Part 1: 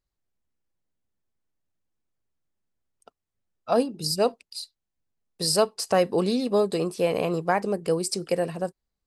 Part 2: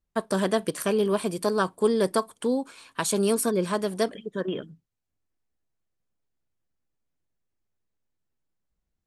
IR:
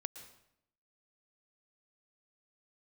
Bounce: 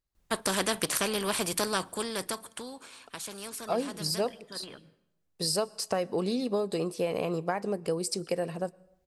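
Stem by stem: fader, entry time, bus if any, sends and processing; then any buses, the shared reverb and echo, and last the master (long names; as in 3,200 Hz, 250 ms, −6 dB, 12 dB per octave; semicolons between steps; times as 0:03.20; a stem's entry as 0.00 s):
−4.5 dB, 0.00 s, send −12 dB, downward compressor, threshold −22 dBFS, peak gain reduction 7 dB
+0.5 dB, 0.15 s, send −20 dB, every bin compressed towards the loudest bin 2 to 1; automatic ducking −15 dB, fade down 1.40 s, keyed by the first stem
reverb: on, RT60 0.75 s, pre-delay 107 ms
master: no processing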